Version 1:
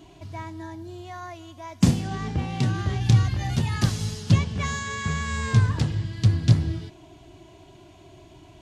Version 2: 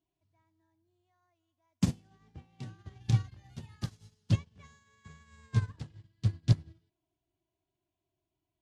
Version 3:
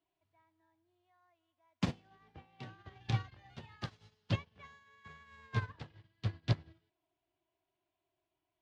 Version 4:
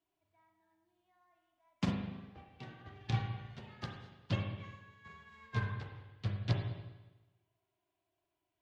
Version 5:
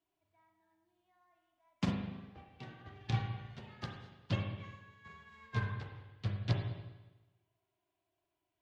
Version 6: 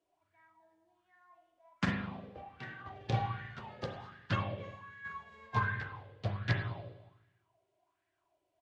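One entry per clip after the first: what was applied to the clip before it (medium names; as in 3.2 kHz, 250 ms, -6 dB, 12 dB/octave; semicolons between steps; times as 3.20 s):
upward expansion 2.5:1, over -33 dBFS; trim -5 dB
three-band isolator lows -12 dB, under 410 Hz, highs -23 dB, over 4.1 kHz; trim +4.5 dB
spring tank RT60 1.1 s, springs 35/40/50 ms, chirp 65 ms, DRR 2 dB; trim -1.5 dB
no audible change
resampled via 22.05 kHz; sweeping bell 1.3 Hz 500–1800 Hz +16 dB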